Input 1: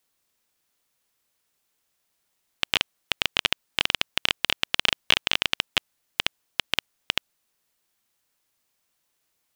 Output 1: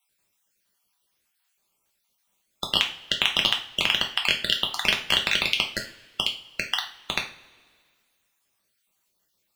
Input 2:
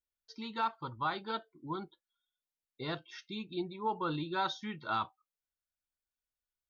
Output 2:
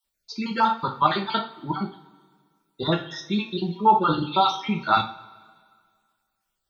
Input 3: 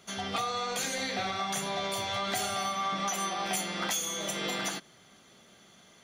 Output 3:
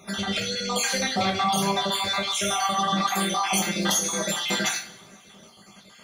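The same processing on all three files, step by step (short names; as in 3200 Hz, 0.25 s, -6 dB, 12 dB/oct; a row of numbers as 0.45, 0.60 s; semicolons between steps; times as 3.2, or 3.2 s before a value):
random spectral dropouts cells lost 47%; two-slope reverb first 0.36 s, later 1.9 s, from -22 dB, DRR 1 dB; match loudness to -24 LUFS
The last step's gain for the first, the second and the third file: +1.0, +13.5, +7.0 dB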